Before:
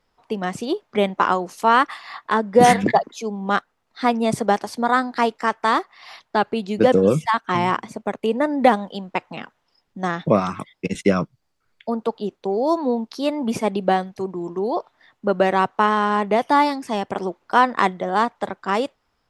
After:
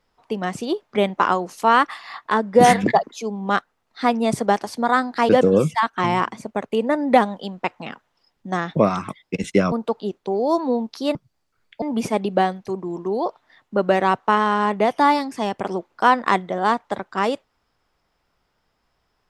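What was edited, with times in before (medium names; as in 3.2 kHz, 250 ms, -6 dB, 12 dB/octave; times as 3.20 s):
5.29–6.80 s: delete
11.23–11.90 s: move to 13.33 s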